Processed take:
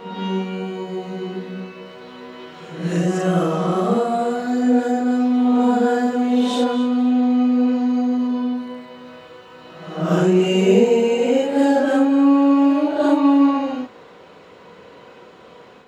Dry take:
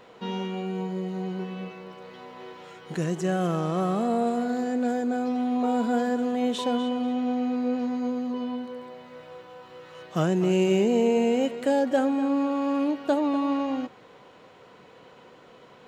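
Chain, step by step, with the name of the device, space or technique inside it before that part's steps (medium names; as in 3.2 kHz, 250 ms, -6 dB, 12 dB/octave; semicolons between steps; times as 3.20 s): reverse reverb (reverse; reverberation RT60 0.90 s, pre-delay 29 ms, DRR -6.5 dB; reverse)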